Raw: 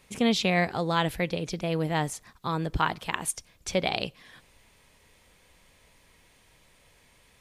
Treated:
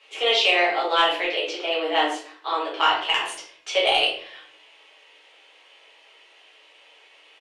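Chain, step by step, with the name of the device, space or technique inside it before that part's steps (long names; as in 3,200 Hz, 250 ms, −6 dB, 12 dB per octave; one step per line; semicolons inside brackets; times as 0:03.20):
Butterworth high-pass 290 Hz 96 dB per octave
intercom (band-pass filter 460–4,400 Hz; parametric band 2,900 Hz +11.5 dB 0.3 octaves; soft clipping −10 dBFS, distortion −23 dB; double-tracking delay 23 ms −10.5 dB)
rectangular room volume 65 cubic metres, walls mixed, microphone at 1.5 metres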